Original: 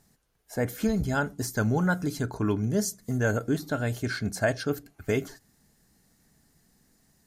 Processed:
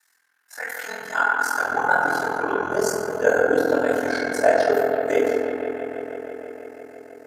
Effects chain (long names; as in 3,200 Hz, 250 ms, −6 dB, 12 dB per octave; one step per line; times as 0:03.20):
high-pass filter sweep 1,500 Hz → 540 Hz, 0:00.42–0:02.51
bucket-brigade delay 163 ms, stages 4,096, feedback 83%, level −9 dB
feedback delay network reverb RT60 1.9 s, low-frequency decay 1.1×, high-frequency decay 0.3×, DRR −8 dB
ring modulation 21 Hz